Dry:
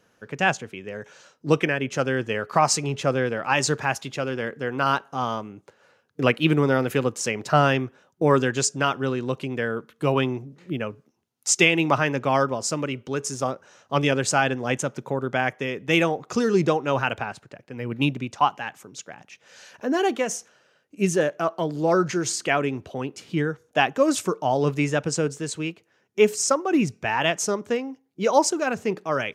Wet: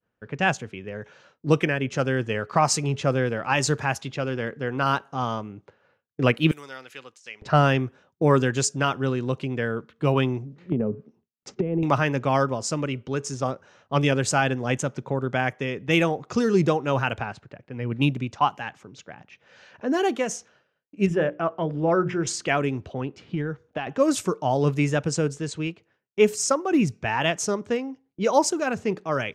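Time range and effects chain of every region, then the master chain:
0:06.51–0:07.42: first difference + compressor whose output falls as the input rises −37 dBFS
0:10.72–0:11.83: hollow resonant body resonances 210/410 Hz, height 13 dB, ringing for 25 ms + downward compressor 16 to 1, threshold −19 dBFS + treble cut that deepens with the level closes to 670 Hz, closed at −20 dBFS
0:21.06–0:22.27: Savitzky-Golay smoothing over 25 samples + mains-hum notches 60/120/180/240/300/360/420/480/540 Hz
0:22.93–0:23.87: low-pass filter 3,600 Hz 6 dB per octave + downward compressor 12 to 1, threshold −23 dBFS
whole clip: downward expander −53 dBFS; low-pass that shuts in the quiet parts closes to 2,900 Hz, open at −19 dBFS; low-shelf EQ 110 Hz +12 dB; level −1.5 dB

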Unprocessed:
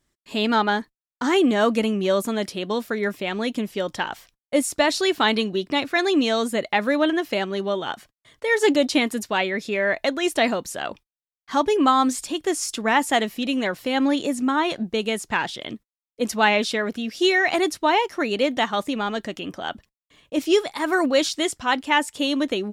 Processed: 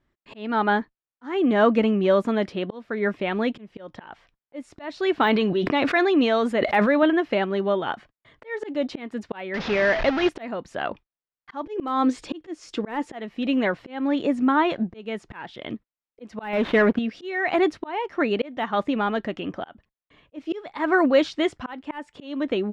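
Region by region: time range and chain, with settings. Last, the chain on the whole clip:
0:05.23–0:07.03: low-shelf EQ 170 Hz −8.5 dB + level that may fall only so fast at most 36 dB per second
0:09.54–0:10.29: linear delta modulator 32 kbit/s, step −20.5 dBFS + high-shelf EQ 4,600 Hz +3.5 dB
0:11.64–0:13.13: parametric band 5,200 Hz +4.5 dB 2.1 octaves + hollow resonant body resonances 330/470 Hz, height 10 dB, ringing for 55 ms
0:16.53–0:16.99: running median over 9 samples + leveller curve on the samples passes 2
whole clip: low-pass filter 2,300 Hz 12 dB per octave; de-essing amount 80%; volume swells 385 ms; level +2 dB

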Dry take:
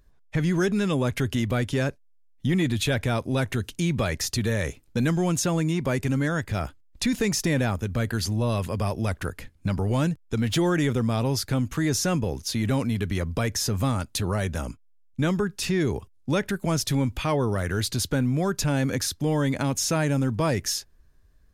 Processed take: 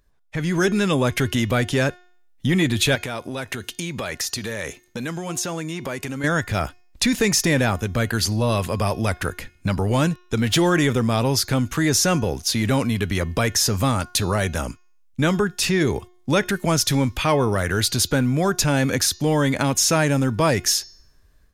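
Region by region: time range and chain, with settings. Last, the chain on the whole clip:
0:02.95–0:06.24: low-shelf EQ 120 Hz −12 dB + downward compressor 4 to 1, threshold −30 dBFS
whole clip: low-shelf EQ 440 Hz −5.5 dB; hum removal 359.2 Hz, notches 19; automatic gain control gain up to 8 dB

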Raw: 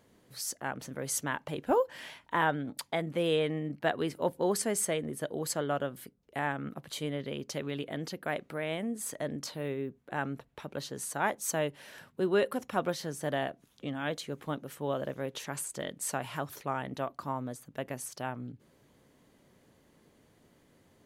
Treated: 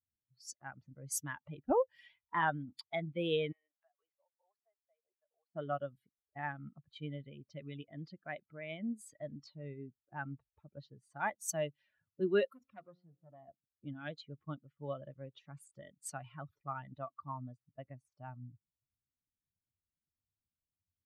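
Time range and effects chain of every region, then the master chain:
0:03.52–0:05.55: high-pass filter 630 Hz 24 dB per octave + downward compressor, threshold −47 dBFS
0:12.47–0:13.48: mains-hum notches 60/120/180/240/300/360/420/480 Hz + tuned comb filter 89 Hz, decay 1.9 s, mix 50% + saturating transformer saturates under 1,600 Hz
whole clip: spectral dynamics exaggerated over time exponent 2; low-pass that shuts in the quiet parts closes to 600 Hz, open at −34.5 dBFS; level −1 dB

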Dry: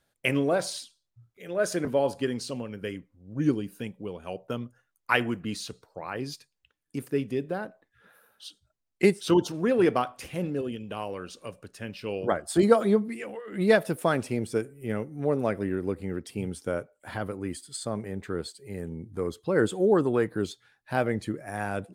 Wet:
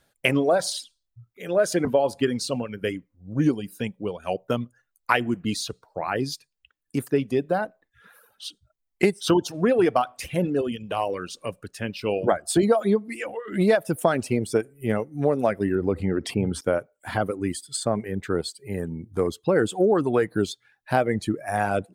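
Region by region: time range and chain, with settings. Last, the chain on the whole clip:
0:15.75–0:16.61: low-pass filter 1,900 Hz 6 dB per octave + envelope flattener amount 50%
whole clip: reverb reduction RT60 0.84 s; dynamic equaliser 700 Hz, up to +5 dB, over −43 dBFS, Q 2.6; downward compressor 5 to 1, threshold −24 dBFS; level +7.5 dB

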